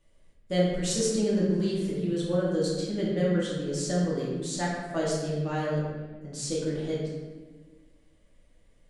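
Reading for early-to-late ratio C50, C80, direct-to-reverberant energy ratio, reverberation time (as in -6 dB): -0.5 dB, 2.0 dB, -6.5 dB, 1.4 s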